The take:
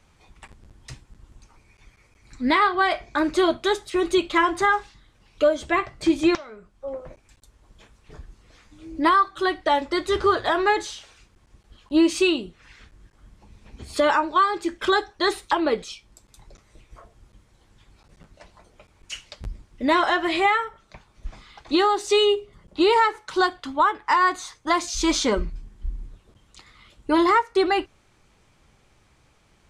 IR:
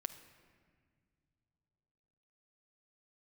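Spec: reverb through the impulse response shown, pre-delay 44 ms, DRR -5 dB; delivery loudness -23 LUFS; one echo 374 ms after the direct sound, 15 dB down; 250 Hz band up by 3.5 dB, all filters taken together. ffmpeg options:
-filter_complex "[0:a]equalizer=f=250:t=o:g=5.5,aecho=1:1:374:0.178,asplit=2[s0][s1];[1:a]atrim=start_sample=2205,adelay=44[s2];[s1][s2]afir=irnorm=-1:irlink=0,volume=2.24[s3];[s0][s3]amix=inputs=2:normalize=0,volume=0.376"

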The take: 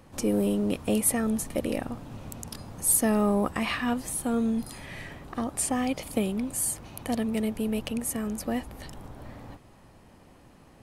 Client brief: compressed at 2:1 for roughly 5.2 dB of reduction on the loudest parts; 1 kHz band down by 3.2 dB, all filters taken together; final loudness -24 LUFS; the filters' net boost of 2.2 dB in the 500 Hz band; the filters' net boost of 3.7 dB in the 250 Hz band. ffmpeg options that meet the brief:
-af "equalizer=f=250:t=o:g=4,equalizer=f=500:t=o:g=3,equalizer=f=1000:t=o:g=-6.5,acompressor=threshold=0.0447:ratio=2,volume=1.88"

